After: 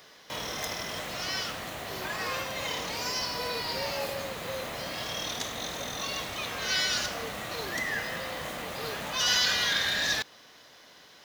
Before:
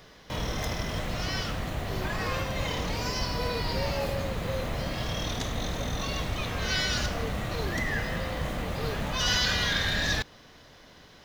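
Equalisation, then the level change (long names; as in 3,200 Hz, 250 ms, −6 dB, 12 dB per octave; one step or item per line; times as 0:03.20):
high-pass filter 520 Hz 6 dB per octave
high-shelf EQ 5,500 Hz +5.5 dB
0.0 dB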